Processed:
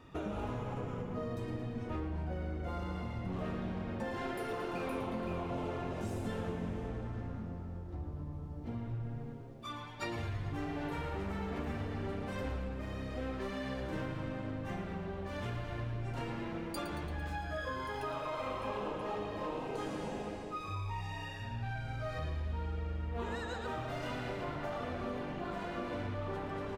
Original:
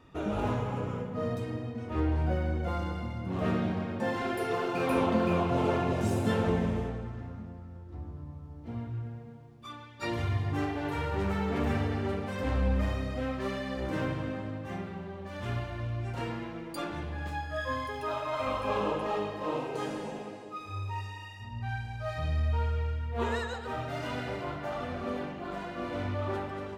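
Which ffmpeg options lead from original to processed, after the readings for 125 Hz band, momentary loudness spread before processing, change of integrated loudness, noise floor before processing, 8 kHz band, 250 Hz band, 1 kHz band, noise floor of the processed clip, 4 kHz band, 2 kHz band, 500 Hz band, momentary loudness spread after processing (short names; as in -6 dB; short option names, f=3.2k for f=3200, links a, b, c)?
-6.5 dB, 13 LU, -7.0 dB, -45 dBFS, -5.5 dB, -6.5 dB, -6.0 dB, -44 dBFS, -5.0 dB, -5.5 dB, -6.5 dB, 4 LU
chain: -filter_complex "[0:a]acompressor=threshold=-37dB:ratio=6,asplit=2[a][b];[b]asplit=8[c][d][e][f][g][h][i][j];[c]adelay=113,afreqshift=-130,volume=-10.5dB[k];[d]adelay=226,afreqshift=-260,volume=-14.4dB[l];[e]adelay=339,afreqshift=-390,volume=-18.3dB[m];[f]adelay=452,afreqshift=-520,volume=-22.1dB[n];[g]adelay=565,afreqshift=-650,volume=-26dB[o];[h]adelay=678,afreqshift=-780,volume=-29.9dB[p];[i]adelay=791,afreqshift=-910,volume=-33.8dB[q];[j]adelay=904,afreqshift=-1040,volume=-37.6dB[r];[k][l][m][n][o][p][q][r]amix=inputs=8:normalize=0[s];[a][s]amix=inputs=2:normalize=0,volume=1dB"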